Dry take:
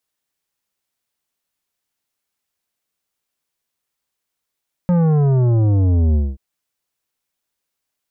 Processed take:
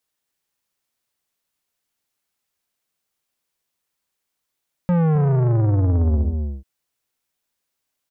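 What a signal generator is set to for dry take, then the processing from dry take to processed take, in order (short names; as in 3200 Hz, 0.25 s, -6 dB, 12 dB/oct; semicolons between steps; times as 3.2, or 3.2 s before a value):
sub drop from 180 Hz, over 1.48 s, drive 11 dB, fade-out 0.22 s, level -13 dB
on a send: echo 0.264 s -8 dB; on the sum: soft clip -14 dBFS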